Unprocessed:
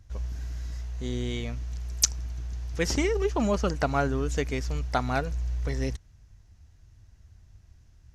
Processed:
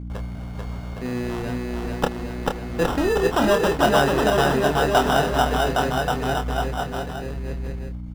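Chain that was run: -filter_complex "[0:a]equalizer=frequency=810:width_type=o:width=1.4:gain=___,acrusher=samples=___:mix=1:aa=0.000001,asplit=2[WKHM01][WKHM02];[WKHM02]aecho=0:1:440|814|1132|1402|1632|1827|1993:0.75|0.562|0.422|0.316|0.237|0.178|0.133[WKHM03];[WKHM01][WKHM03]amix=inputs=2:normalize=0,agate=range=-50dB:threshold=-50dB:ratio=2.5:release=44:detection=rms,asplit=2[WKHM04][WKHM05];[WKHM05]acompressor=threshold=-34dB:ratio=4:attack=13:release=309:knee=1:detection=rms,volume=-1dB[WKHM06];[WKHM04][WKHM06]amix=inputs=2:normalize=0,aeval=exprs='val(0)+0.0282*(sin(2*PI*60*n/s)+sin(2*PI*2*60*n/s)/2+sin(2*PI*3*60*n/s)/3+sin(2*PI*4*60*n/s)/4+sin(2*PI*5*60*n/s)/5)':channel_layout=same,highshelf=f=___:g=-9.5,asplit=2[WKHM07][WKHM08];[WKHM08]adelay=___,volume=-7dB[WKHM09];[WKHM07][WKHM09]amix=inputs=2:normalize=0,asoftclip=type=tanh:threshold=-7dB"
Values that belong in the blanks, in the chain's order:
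11, 20, 3.9k, 28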